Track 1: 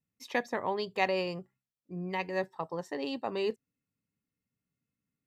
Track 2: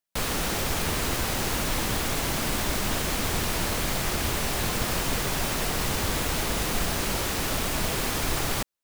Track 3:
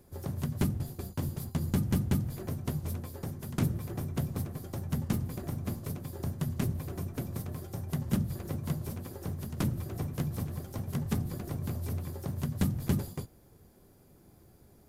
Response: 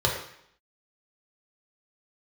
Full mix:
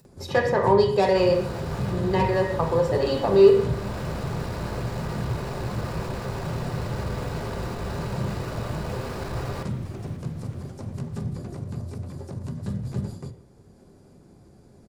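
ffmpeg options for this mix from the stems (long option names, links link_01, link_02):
-filter_complex "[0:a]asoftclip=type=tanh:threshold=-24.5dB,volume=2dB,asplit=3[link_01][link_02][link_03];[link_02]volume=-6.5dB[link_04];[1:a]lowpass=frequency=2000:poles=1,adelay=1000,volume=1.5dB,asplit=3[link_05][link_06][link_07];[link_06]volume=-23.5dB[link_08];[link_07]volume=-22.5dB[link_09];[2:a]lowpass=frequency=9000:width=0.5412,lowpass=frequency=9000:width=1.3066,adelay=50,volume=1dB,asplit=2[link_10][link_11];[link_11]volume=-23.5dB[link_12];[link_03]apad=whole_len=433718[link_13];[link_05][link_13]sidechaincompress=threshold=-45dB:ratio=8:attack=16:release=403[link_14];[link_14][link_10]amix=inputs=2:normalize=0,asoftclip=type=tanh:threshold=-24.5dB,alimiter=level_in=8.5dB:limit=-24dB:level=0:latency=1:release=23,volume=-8.5dB,volume=0dB[link_15];[3:a]atrim=start_sample=2205[link_16];[link_04][link_08][link_12]amix=inputs=3:normalize=0[link_17];[link_17][link_16]afir=irnorm=-1:irlink=0[link_18];[link_09]aecho=0:1:540|1080|1620|2160|2700|3240|3780|4320:1|0.55|0.303|0.166|0.0915|0.0503|0.0277|0.0152[link_19];[link_01][link_15][link_18][link_19]amix=inputs=4:normalize=0,equalizer=frequency=240:width=0.98:gain=6,acompressor=mode=upward:threshold=-46dB:ratio=2.5"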